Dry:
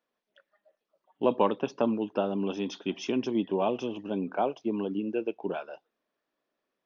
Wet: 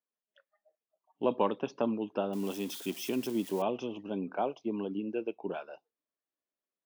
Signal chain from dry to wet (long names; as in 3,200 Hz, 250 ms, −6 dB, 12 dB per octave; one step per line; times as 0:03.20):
0:02.33–0:03.62: spike at every zero crossing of −31.5 dBFS
noise reduction from a noise print of the clip's start 12 dB
level −4 dB